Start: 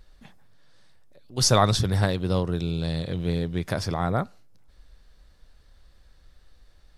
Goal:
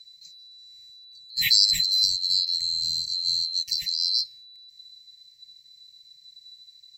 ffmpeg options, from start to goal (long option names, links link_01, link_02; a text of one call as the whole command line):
ffmpeg -i in.wav -af "afftfilt=real='real(if(lt(b,736),b+184*(1-2*mod(floor(b/184),2)),b),0)':imag='imag(if(lt(b,736),b+184*(1-2*mod(floor(b/184),2)),b),0)':win_size=2048:overlap=0.75,afftfilt=real='re*(1-between(b*sr/4096,190,1800))':imag='im*(1-between(b*sr/4096,190,1800))':win_size=4096:overlap=0.75" out.wav